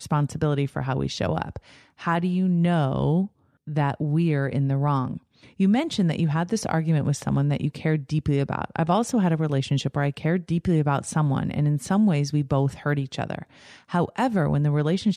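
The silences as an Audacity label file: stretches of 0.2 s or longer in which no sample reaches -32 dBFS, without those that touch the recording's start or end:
1.570000	2.020000	silence
3.260000	3.680000	silence
5.170000	5.600000	silence
13.430000	13.910000	silence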